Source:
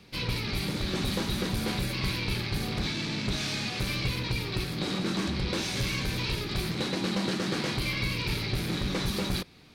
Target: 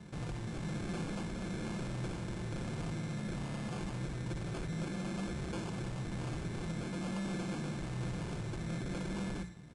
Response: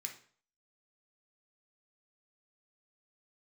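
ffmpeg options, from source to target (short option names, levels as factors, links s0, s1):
-filter_complex "[0:a]highpass=f=40:w=0.5412,highpass=f=40:w=1.3066,bass=f=250:g=9,treble=f=4000:g=4,bandreject=f=60:t=h:w=6,bandreject=f=120:t=h:w=6,bandreject=f=180:t=h:w=6,aeval=exprs='0.0708*(abs(mod(val(0)/0.0708+3,4)-2)-1)':c=same,equalizer=f=3100:w=0.77:g=-10,alimiter=level_in=1.88:limit=0.0631:level=0:latency=1:release=95,volume=0.531,tremolo=f=1.1:d=0.34,asoftclip=type=hard:threshold=0.0133,aecho=1:1:5.8:0.36,acrusher=samples=23:mix=1:aa=0.000001,aresample=22050,aresample=44100,asplit=2[s0][s1];[1:a]atrim=start_sample=2205,adelay=58[s2];[s1][s2]afir=irnorm=-1:irlink=0,volume=0.473[s3];[s0][s3]amix=inputs=2:normalize=0"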